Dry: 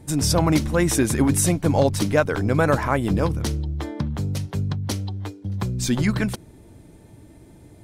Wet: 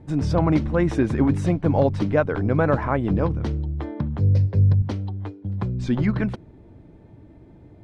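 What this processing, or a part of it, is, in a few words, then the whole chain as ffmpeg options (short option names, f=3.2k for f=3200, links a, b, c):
phone in a pocket: -filter_complex "[0:a]asettb=1/sr,asplit=3[a][b][c];[a]atrim=end=4.204[d];[b]atrim=start=4.2:end=4.82,asetpts=PTS-STARTPTS,afade=t=in:d=0.004:c=qsin,afade=t=out:st=0.616:d=0.004:c=qsin,equalizer=f=100:t=o:w=0.33:g=11,equalizer=f=500:t=o:w=0.33:g=9,equalizer=f=800:t=o:w=0.33:g=-7,equalizer=f=1.25k:t=o:w=0.33:g=-11,equalizer=f=3.15k:t=o:w=0.33:g=-8,equalizer=f=5k:t=o:w=0.33:g=8,equalizer=f=8k:t=o:w=0.33:g=-7,equalizer=f=12.5k:t=o:w=0.33:g=9[e];[c]atrim=start=4.816[f];[d][e]acrossfade=d=0.004:c1=hsin:c2=qsin[g];[g][f]acrossfade=d=0.004:c1=qsin:c2=hsin,lowpass=3.6k,highshelf=f=2.2k:g=-10.5"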